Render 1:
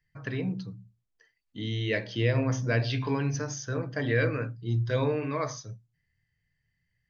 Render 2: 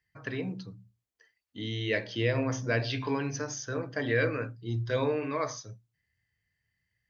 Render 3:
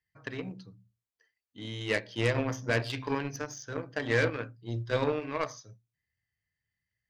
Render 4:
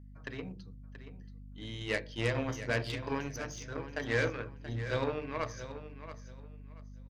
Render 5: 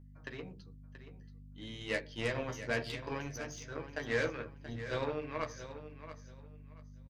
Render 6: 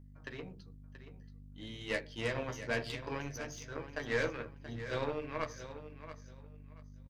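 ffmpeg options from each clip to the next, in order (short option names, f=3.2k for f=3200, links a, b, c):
-af "highpass=62,equalizer=f=150:t=o:w=0.82:g=-8"
-af "aeval=exprs='0.211*(cos(1*acos(clip(val(0)/0.211,-1,1)))-cos(1*PI/2))+0.0237*(cos(5*acos(clip(val(0)/0.211,-1,1)))-cos(5*PI/2))+0.0335*(cos(7*acos(clip(val(0)/0.211,-1,1)))-cos(7*PI/2))':c=same"
-af "bandreject=f=50:t=h:w=6,bandreject=f=100:t=h:w=6,bandreject=f=150:t=h:w=6,bandreject=f=200:t=h:w=6,bandreject=f=250:t=h:w=6,bandreject=f=300:t=h:w=6,bandreject=f=350:t=h:w=6,bandreject=f=400:t=h:w=6,bandreject=f=450:t=h:w=6,bandreject=f=500:t=h:w=6,aeval=exprs='val(0)+0.00501*(sin(2*PI*50*n/s)+sin(2*PI*2*50*n/s)/2+sin(2*PI*3*50*n/s)/3+sin(2*PI*4*50*n/s)/4+sin(2*PI*5*50*n/s)/5)':c=same,aecho=1:1:680|1360|2040:0.251|0.0578|0.0133,volume=-3.5dB"
-filter_complex "[0:a]asplit=2[a][b];[b]adelay=13,volume=-7dB[c];[a][c]amix=inputs=2:normalize=0,volume=-3dB"
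-af "aeval=exprs='if(lt(val(0),0),0.708*val(0),val(0))':c=same,volume=1dB"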